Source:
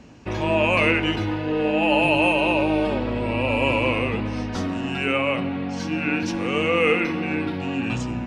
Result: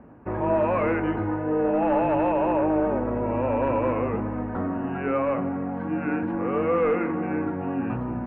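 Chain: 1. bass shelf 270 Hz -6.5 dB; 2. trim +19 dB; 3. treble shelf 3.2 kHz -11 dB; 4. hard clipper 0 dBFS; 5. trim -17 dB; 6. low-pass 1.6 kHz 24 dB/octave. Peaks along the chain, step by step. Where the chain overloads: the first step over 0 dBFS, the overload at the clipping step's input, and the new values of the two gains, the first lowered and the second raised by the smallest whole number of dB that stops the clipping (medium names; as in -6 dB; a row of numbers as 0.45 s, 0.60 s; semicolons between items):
-7.5 dBFS, +11.5 dBFS, +10.0 dBFS, 0.0 dBFS, -17.0 dBFS, -15.5 dBFS; step 2, 10.0 dB; step 2 +9 dB, step 5 -7 dB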